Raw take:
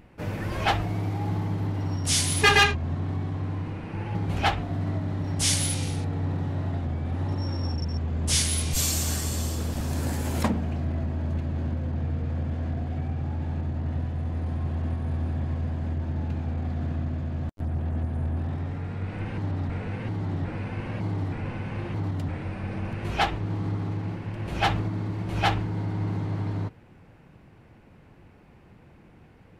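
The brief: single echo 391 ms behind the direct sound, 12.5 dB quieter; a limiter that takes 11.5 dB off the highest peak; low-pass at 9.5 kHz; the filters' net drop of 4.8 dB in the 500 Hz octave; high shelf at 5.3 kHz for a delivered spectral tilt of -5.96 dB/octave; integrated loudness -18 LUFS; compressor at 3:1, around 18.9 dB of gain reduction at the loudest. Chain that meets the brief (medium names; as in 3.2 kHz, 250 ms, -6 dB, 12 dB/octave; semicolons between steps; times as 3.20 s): low-pass 9.5 kHz; peaking EQ 500 Hz -6.5 dB; treble shelf 5.3 kHz -6.5 dB; compression 3:1, threshold -43 dBFS; peak limiter -38.5 dBFS; delay 391 ms -12.5 dB; trim +28.5 dB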